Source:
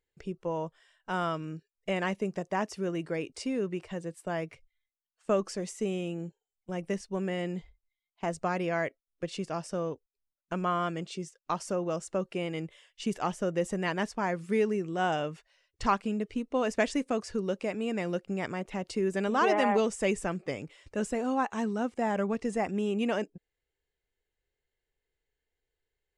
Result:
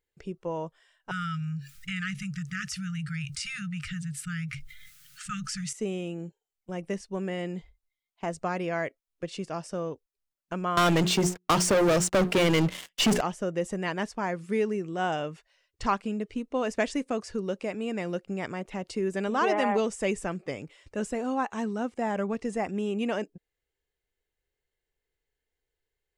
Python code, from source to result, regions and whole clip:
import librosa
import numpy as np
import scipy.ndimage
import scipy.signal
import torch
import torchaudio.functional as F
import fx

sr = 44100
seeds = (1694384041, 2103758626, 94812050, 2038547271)

y = fx.chain(x, sr, fx.brickwall_bandstop(low_hz=190.0, high_hz=1200.0),
    fx.peak_eq(hz=140.0, db=14.5, octaves=0.38),
    fx.env_flatten(amount_pct=70), at=(1.11, 5.73))
y = fx.chain(y, sr, fx.hum_notches(base_hz=60, count=7),
    fx.leveller(passes=5),
    fx.band_squash(depth_pct=40), at=(10.77, 13.21))